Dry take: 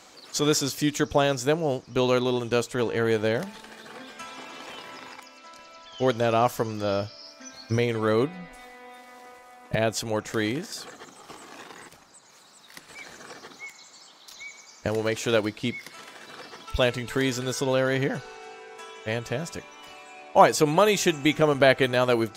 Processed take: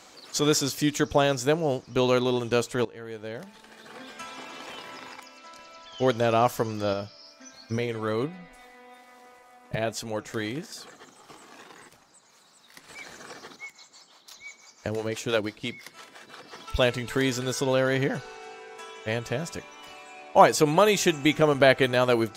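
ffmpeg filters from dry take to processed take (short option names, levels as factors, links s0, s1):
-filter_complex "[0:a]asettb=1/sr,asplit=3[s0][s1][s2];[s0]atrim=end=6.934[s3];[s1]atrim=start=6.93:end=12.84,asetpts=PTS-STARTPTS,afade=t=in:d=0.004:c=qsin,afade=t=out:st=5.906:d=0.004:c=qsin,flanger=delay=4.2:depth=4.2:regen=74:speed=1.3:shape=sinusoidal[s4];[s2]atrim=start=12.836[s5];[s3][s4]acrossfade=d=0.004:c1=hsin:c2=qsin[s6];[s6][s5]acrossfade=d=0.004:c1=qsin:c2=hsin,asettb=1/sr,asplit=3[s7][s8][s9];[s7]atrim=end=13.564[s10];[s8]atrim=start=13.56:end=16.53,asetpts=PTS-STARTPTS,afade=t=in:d=0.004:c=qsin,afade=t=out:st=2.966:d=0.004:c=qsin,acrossover=split=420[s11][s12];[s11]aeval=exprs='val(0)*(1-0.7/2+0.7/2*cos(2*PI*5.9*n/s))':c=same[s13];[s12]aeval=exprs='val(0)*(1-0.7/2-0.7/2*cos(2*PI*5.9*n/s))':c=same[s14];[s13][s14]amix=inputs=2:normalize=0[s15];[s9]atrim=start=16.526[s16];[s10][s15]acrossfade=d=0.004:c1=hsin:c2=qsin[s17];[s17][s16]acrossfade=d=0.004:c1=qsin:c2=hsin,asplit=2[s18][s19];[s18]atrim=end=2.85,asetpts=PTS-STARTPTS,afade=t=out:st=2.846:d=0.004:c=hsin:silence=0.141254[s20];[s19]atrim=start=2.85,asetpts=PTS-STARTPTS,afade=t=in:d=1.23:c=qua:silence=0.141254[s21];[s20][s21]concat=n=2:v=0:a=1"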